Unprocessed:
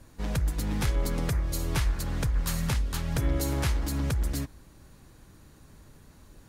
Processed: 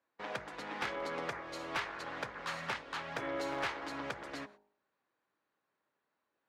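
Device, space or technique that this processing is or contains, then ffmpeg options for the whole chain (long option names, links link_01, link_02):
walkie-talkie: -af "highpass=580,lowpass=2500,asoftclip=type=hard:threshold=-31dB,agate=range=-22dB:threshold=-57dB:ratio=16:detection=peak,bandreject=frequency=51.46:width_type=h:width=4,bandreject=frequency=102.92:width_type=h:width=4,bandreject=frequency=154.38:width_type=h:width=4,bandreject=frequency=205.84:width_type=h:width=4,bandreject=frequency=257.3:width_type=h:width=4,bandreject=frequency=308.76:width_type=h:width=4,bandreject=frequency=360.22:width_type=h:width=4,bandreject=frequency=411.68:width_type=h:width=4,bandreject=frequency=463.14:width_type=h:width=4,bandreject=frequency=514.6:width_type=h:width=4,bandreject=frequency=566.06:width_type=h:width=4,bandreject=frequency=617.52:width_type=h:width=4,bandreject=frequency=668.98:width_type=h:width=4,bandreject=frequency=720.44:width_type=h:width=4,bandreject=frequency=771.9:width_type=h:width=4,bandreject=frequency=823.36:width_type=h:width=4,bandreject=frequency=874.82:width_type=h:width=4,bandreject=frequency=926.28:width_type=h:width=4,bandreject=frequency=977.74:width_type=h:width=4,volume=2.5dB"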